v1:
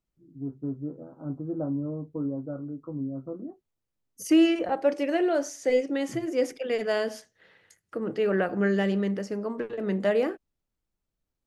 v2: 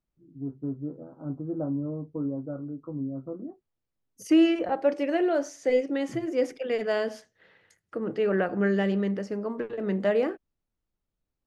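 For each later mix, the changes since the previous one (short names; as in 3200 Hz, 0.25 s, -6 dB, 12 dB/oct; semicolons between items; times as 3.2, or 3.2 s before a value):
master: add LPF 3900 Hz 6 dB/oct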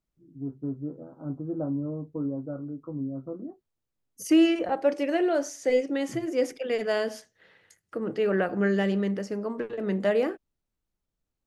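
master: remove LPF 3900 Hz 6 dB/oct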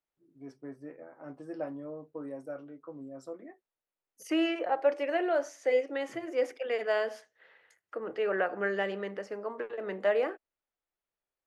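first voice: remove Chebyshev low-pass 1400 Hz, order 6; master: add three-band isolator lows -20 dB, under 420 Hz, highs -12 dB, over 3000 Hz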